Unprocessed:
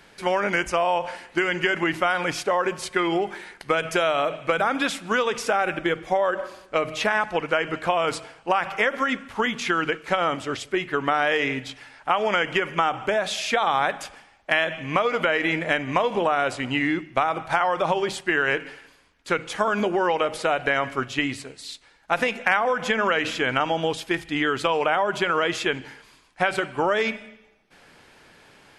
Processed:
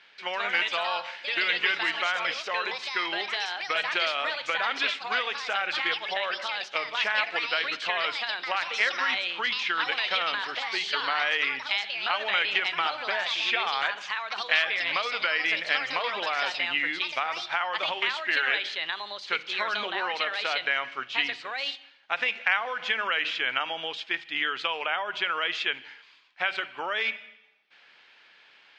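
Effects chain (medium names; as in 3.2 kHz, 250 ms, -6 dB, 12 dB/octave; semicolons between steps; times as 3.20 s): band-pass filter 3.3 kHz, Q 1.2; ever faster or slower copies 190 ms, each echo +4 st, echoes 2; distance through air 170 m; trim +4.5 dB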